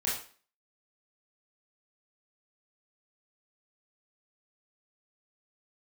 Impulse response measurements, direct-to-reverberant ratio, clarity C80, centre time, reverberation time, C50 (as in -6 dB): -7.5 dB, 9.0 dB, 43 ms, 0.40 s, 4.0 dB